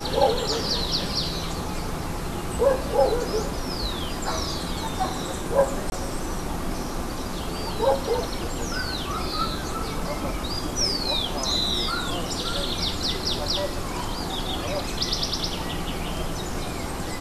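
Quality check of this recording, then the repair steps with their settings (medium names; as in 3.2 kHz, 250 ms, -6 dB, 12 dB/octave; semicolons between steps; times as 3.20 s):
5.90–5.92 s: dropout 21 ms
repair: interpolate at 5.90 s, 21 ms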